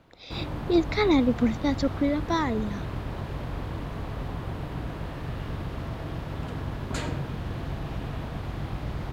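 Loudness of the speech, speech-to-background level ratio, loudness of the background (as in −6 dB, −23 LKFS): −25.5 LKFS, 9.0 dB, −34.5 LKFS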